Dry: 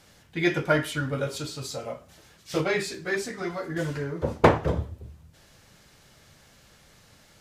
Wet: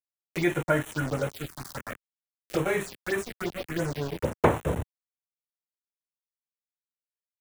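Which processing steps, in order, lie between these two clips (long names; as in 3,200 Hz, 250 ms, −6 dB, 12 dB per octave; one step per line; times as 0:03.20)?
centre clipping without the shift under −30 dBFS
phaser swept by the level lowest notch 150 Hz, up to 4,800 Hz, full sweep at −24.5 dBFS
multiband upward and downward compressor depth 40%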